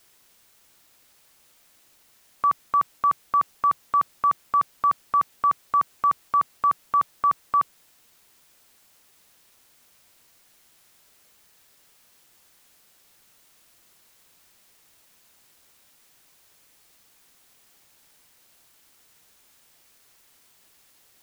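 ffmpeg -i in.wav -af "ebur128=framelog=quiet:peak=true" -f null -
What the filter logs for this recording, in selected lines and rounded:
Integrated loudness:
  I:         -23.7 LUFS
  Threshold: -39.4 LUFS
Loudness range:
  LRA:         6.6 LU
  Threshold: -48.9 LUFS
  LRA low:   -30.1 LUFS
  LRA high:  -23.5 LUFS
True peak:
  Peak:      -14.6 dBFS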